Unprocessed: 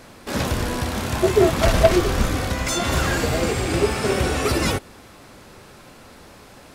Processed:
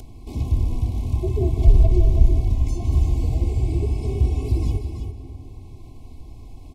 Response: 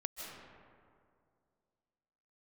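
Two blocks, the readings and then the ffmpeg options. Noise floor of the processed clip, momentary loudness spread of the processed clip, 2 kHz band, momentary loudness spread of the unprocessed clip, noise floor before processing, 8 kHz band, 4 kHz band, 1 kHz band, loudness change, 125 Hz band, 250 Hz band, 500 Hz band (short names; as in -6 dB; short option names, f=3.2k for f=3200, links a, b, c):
-40 dBFS, 16 LU, -25.0 dB, 8 LU, -46 dBFS, -19.5 dB, -20.0 dB, -17.0 dB, -1.0 dB, +5.0 dB, -7.0 dB, -12.0 dB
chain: -filter_complex "[0:a]asuperstop=centerf=1500:order=20:qfactor=1.6,aecho=1:1:327:0.299,asplit=2[a][b];[1:a]atrim=start_sample=2205[c];[b][c]afir=irnorm=-1:irlink=0,volume=-5dB[d];[a][d]amix=inputs=2:normalize=0,acrossover=split=490[e][f];[f]acompressor=threshold=-26dB:ratio=1.5[g];[e][g]amix=inputs=2:normalize=0,firequalizer=gain_entry='entry(160,0);entry(430,-18);entry(1800,-27)':delay=0.05:min_phase=1,asplit=2[h][i];[i]acompressor=mode=upward:threshold=-26dB:ratio=2.5,volume=-3dB[j];[h][j]amix=inputs=2:normalize=0,equalizer=f=230:w=0.31:g=-7.5,aecho=1:1:2.7:0.69"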